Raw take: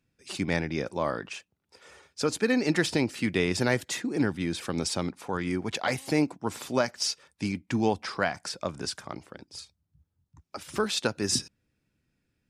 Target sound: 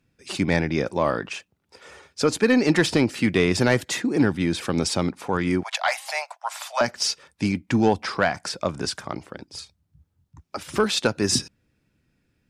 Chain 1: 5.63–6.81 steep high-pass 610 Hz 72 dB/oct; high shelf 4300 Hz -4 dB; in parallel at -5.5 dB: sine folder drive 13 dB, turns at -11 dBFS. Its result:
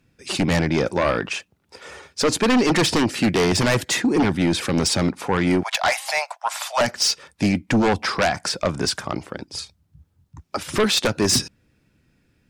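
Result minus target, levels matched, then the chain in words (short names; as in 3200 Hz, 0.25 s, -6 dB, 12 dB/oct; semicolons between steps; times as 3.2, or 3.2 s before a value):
sine folder: distortion +16 dB
5.63–6.81 steep high-pass 610 Hz 72 dB/oct; high shelf 4300 Hz -4 dB; in parallel at -5.5 dB: sine folder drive 4 dB, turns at -11 dBFS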